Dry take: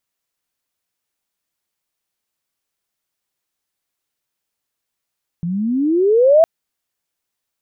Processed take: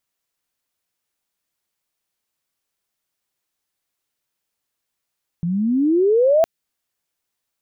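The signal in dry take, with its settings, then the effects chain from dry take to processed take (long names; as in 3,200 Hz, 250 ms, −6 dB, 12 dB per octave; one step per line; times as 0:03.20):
pitch glide with a swell sine, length 1.01 s, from 164 Hz, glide +24.5 semitones, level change +13 dB, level −6 dB
dynamic equaliser 920 Hz, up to −7 dB, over −26 dBFS, Q 0.89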